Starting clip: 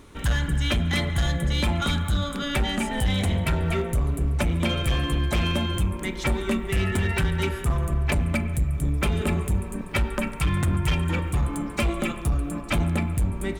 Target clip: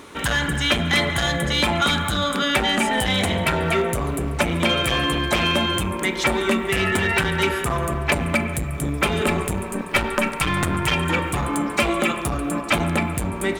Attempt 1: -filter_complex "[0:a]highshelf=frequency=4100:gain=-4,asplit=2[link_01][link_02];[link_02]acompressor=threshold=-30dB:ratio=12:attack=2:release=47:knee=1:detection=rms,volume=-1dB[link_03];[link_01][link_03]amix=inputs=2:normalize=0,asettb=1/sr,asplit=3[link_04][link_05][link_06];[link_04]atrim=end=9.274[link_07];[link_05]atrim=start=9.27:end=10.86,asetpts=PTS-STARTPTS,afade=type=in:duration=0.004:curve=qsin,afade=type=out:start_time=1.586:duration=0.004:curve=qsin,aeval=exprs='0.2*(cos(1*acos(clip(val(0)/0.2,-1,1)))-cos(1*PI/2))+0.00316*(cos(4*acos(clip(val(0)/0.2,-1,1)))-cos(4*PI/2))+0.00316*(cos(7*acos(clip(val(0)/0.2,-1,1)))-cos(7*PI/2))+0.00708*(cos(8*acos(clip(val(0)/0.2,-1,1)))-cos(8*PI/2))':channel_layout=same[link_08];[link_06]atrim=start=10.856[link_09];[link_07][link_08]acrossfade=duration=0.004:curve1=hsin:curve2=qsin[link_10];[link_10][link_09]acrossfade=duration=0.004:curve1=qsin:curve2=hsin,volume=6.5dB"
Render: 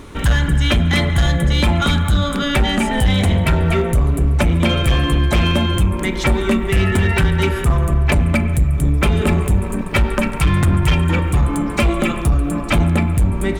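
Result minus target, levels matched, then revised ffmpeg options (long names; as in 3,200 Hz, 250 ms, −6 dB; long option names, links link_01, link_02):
500 Hz band −2.5 dB
-filter_complex "[0:a]highpass=frequency=460:poles=1,highshelf=frequency=4100:gain=-4,asplit=2[link_01][link_02];[link_02]acompressor=threshold=-30dB:ratio=12:attack=2:release=47:knee=1:detection=rms,volume=-1dB[link_03];[link_01][link_03]amix=inputs=2:normalize=0,asettb=1/sr,asplit=3[link_04][link_05][link_06];[link_04]atrim=end=9.274[link_07];[link_05]atrim=start=9.27:end=10.86,asetpts=PTS-STARTPTS,afade=type=in:duration=0.004:curve=qsin,afade=type=out:start_time=1.586:duration=0.004:curve=qsin,aeval=exprs='0.2*(cos(1*acos(clip(val(0)/0.2,-1,1)))-cos(1*PI/2))+0.00316*(cos(4*acos(clip(val(0)/0.2,-1,1)))-cos(4*PI/2))+0.00316*(cos(7*acos(clip(val(0)/0.2,-1,1)))-cos(7*PI/2))+0.00708*(cos(8*acos(clip(val(0)/0.2,-1,1)))-cos(8*PI/2))':channel_layout=same[link_08];[link_06]atrim=start=10.856[link_09];[link_07][link_08]acrossfade=duration=0.004:curve1=hsin:curve2=qsin[link_10];[link_10][link_09]acrossfade=duration=0.004:curve1=qsin:curve2=hsin,volume=6.5dB"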